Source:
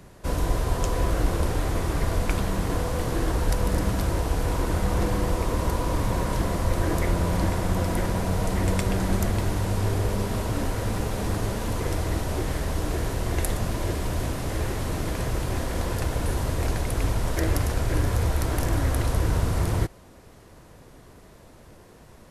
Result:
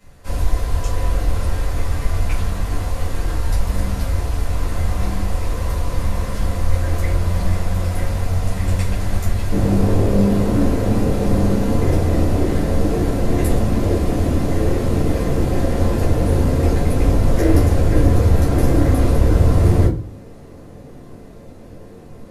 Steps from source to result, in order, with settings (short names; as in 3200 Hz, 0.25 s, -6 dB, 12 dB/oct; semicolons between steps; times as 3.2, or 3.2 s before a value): bell 290 Hz -7 dB 2.6 oct, from 9.52 s +9 dB; reverb RT60 0.35 s, pre-delay 4 ms, DRR -10 dB; gain -8.5 dB